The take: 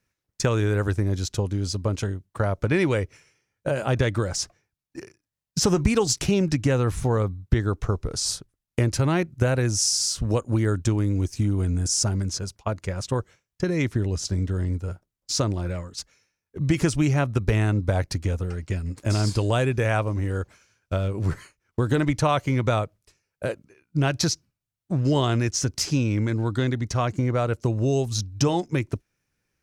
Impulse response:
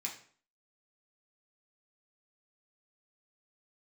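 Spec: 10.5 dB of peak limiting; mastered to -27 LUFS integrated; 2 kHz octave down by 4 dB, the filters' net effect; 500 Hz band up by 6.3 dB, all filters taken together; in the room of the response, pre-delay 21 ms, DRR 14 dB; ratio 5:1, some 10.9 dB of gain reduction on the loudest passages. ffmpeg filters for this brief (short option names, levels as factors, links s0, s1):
-filter_complex "[0:a]equalizer=f=500:t=o:g=8,equalizer=f=2000:t=o:g=-6,acompressor=threshold=0.0562:ratio=5,alimiter=limit=0.075:level=0:latency=1,asplit=2[s0][s1];[1:a]atrim=start_sample=2205,adelay=21[s2];[s1][s2]afir=irnorm=-1:irlink=0,volume=0.2[s3];[s0][s3]amix=inputs=2:normalize=0,volume=1.78"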